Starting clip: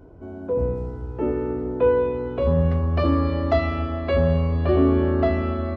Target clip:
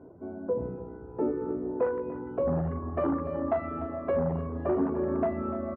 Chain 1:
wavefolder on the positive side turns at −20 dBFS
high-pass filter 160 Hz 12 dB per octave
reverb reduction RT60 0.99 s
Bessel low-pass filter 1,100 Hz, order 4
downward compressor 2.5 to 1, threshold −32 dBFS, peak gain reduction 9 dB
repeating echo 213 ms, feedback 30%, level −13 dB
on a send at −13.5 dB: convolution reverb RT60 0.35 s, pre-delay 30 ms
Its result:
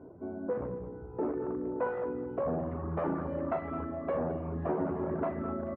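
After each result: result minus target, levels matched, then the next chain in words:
wavefolder on the positive side: distortion +11 dB; echo 82 ms early; downward compressor: peak gain reduction +2.5 dB
wavefolder on the positive side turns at −14 dBFS
high-pass filter 160 Hz 12 dB per octave
reverb reduction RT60 0.99 s
Bessel low-pass filter 1,100 Hz, order 4
downward compressor 2.5 to 1, threshold −32 dBFS, peak gain reduction 10.5 dB
repeating echo 213 ms, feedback 30%, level −13 dB
on a send at −13.5 dB: convolution reverb RT60 0.35 s, pre-delay 30 ms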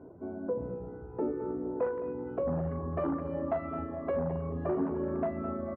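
echo 82 ms early; downward compressor: peak gain reduction +4 dB
wavefolder on the positive side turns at −14 dBFS
high-pass filter 160 Hz 12 dB per octave
reverb reduction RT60 0.99 s
Bessel low-pass filter 1,100 Hz, order 4
downward compressor 2.5 to 1, threshold −32 dBFS, peak gain reduction 10.5 dB
repeating echo 295 ms, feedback 30%, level −13 dB
on a send at −13.5 dB: convolution reverb RT60 0.35 s, pre-delay 30 ms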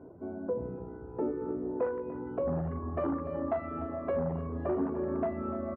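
downward compressor: peak gain reduction +4 dB
wavefolder on the positive side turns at −14 dBFS
high-pass filter 160 Hz 12 dB per octave
reverb reduction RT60 0.99 s
Bessel low-pass filter 1,100 Hz, order 4
downward compressor 2.5 to 1, threshold −25.5 dBFS, peak gain reduction 6.5 dB
repeating echo 295 ms, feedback 30%, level −13 dB
on a send at −13.5 dB: convolution reverb RT60 0.35 s, pre-delay 30 ms

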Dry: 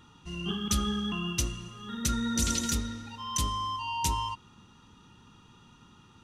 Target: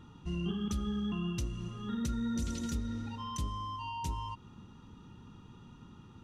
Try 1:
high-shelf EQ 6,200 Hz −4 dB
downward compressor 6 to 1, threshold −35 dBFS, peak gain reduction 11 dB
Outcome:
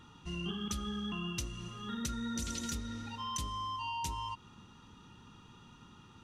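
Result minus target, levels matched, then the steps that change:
1,000 Hz band +3.5 dB
add after downward compressor: tilt shelving filter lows +5.5 dB, about 740 Hz

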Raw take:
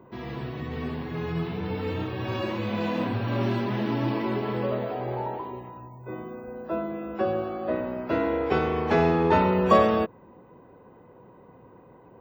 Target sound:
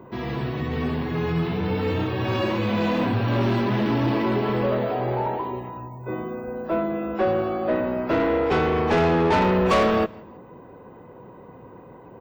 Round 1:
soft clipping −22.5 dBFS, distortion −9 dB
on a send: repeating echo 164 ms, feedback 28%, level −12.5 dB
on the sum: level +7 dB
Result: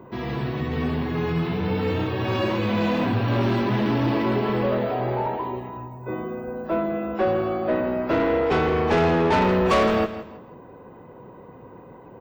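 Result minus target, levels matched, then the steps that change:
echo-to-direct +11 dB
change: repeating echo 164 ms, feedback 28%, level −23.5 dB

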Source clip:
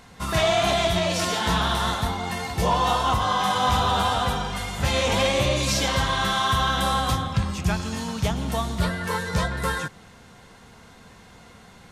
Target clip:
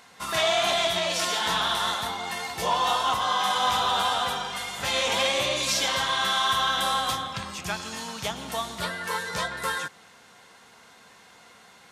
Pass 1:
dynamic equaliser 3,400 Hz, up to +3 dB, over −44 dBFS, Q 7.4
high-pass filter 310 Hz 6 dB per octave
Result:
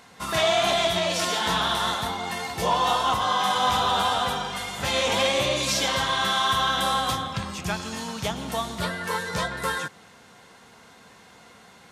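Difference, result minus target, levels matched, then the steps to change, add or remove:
250 Hz band +5.0 dB
change: high-pass filter 750 Hz 6 dB per octave

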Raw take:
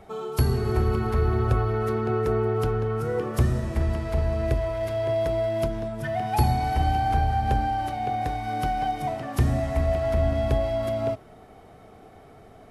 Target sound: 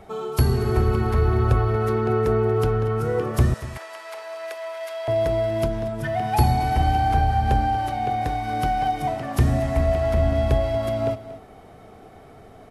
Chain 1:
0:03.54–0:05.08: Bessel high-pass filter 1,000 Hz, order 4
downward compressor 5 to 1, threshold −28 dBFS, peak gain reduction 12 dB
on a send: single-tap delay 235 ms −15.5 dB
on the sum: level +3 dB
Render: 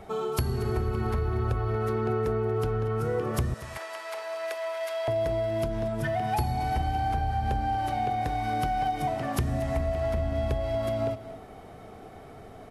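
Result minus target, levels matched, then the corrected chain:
downward compressor: peak gain reduction +12 dB
0:03.54–0:05.08: Bessel high-pass filter 1,000 Hz, order 4
on a send: single-tap delay 235 ms −15.5 dB
on the sum: level +3 dB

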